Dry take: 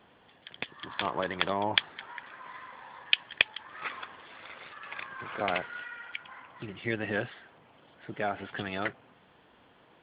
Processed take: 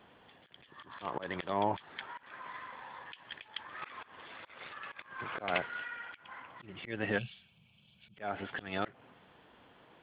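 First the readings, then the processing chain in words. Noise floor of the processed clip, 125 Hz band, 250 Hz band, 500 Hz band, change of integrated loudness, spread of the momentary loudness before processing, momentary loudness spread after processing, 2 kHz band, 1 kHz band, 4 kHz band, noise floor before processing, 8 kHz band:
-65 dBFS, -3.0 dB, -3.5 dB, -3.5 dB, -7.0 dB, 18 LU, 15 LU, -7.0 dB, -3.0 dB, -13.5 dB, -61 dBFS, n/a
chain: spectral gain 7.18–8.18, 220–2200 Hz -21 dB; auto swell 0.178 s

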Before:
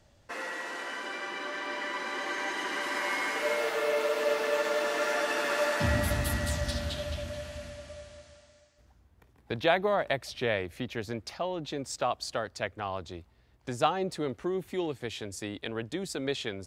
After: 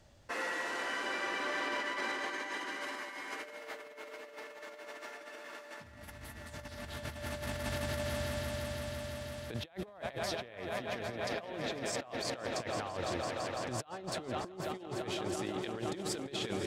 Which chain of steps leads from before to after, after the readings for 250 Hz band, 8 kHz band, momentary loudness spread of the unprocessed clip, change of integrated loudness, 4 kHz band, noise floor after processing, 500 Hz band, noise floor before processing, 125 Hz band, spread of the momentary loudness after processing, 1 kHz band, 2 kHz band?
-5.0 dB, -4.0 dB, 11 LU, -7.0 dB, -4.5 dB, -52 dBFS, -8.0 dB, -63 dBFS, -6.0 dB, 12 LU, -6.5 dB, -6.0 dB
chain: swelling echo 0.168 s, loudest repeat 5, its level -13.5 dB; negative-ratio compressor -35 dBFS, ratio -0.5; gain -4 dB

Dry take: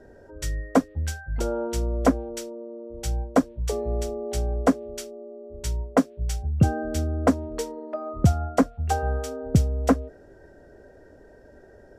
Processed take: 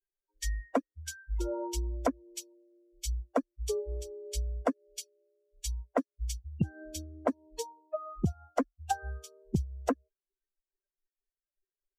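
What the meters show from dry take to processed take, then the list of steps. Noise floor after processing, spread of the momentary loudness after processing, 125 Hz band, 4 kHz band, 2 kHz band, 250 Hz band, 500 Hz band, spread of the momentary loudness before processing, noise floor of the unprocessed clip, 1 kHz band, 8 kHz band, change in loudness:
under -85 dBFS, 10 LU, -12.0 dB, -5.0 dB, -9.0 dB, -11.5 dB, -8.5 dB, 13 LU, -51 dBFS, -8.0 dB, -4.5 dB, -10.0 dB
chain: per-bin expansion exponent 3; compressor 16:1, threshold -27 dBFS, peak gain reduction 13.5 dB; gain +2 dB

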